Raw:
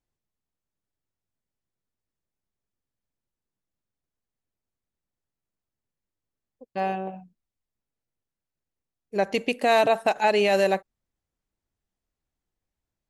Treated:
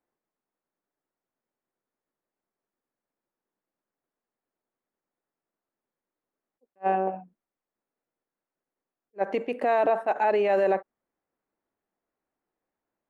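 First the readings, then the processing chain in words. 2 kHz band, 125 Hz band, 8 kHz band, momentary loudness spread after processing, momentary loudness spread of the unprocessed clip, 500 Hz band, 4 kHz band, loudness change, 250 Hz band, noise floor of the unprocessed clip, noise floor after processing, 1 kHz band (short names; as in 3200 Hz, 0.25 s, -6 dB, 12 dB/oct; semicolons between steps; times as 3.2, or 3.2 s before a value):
-6.5 dB, n/a, under -20 dB, 9 LU, 12 LU, -1.5 dB, under -15 dB, -2.0 dB, -4.0 dB, under -85 dBFS, under -85 dBFS, -1.0 dB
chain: limiter -21 dBFS, peak gain reduction 11 dB; three-band isolator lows -23 dB, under 230 Hz, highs -22 dB, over 2000 Hz; attack slew limiter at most 570 dB/s; gain +7 dB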